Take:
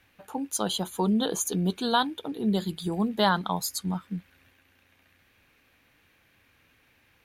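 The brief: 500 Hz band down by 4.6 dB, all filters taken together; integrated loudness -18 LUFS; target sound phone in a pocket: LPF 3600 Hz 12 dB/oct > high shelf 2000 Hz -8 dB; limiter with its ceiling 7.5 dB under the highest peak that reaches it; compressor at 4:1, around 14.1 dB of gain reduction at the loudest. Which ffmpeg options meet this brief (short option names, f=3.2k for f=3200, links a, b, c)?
-af "equalizer=f=500:t=o:g=-5.5,acompressor=threshold=-39dB:ratio=4,alimiter=level_in=8.5dB:limit=-24dB:level=0:latency=1,volume=-8.5dB,lowpass=3.6k,highshelf=f=2k:g=-8,volume=26dB"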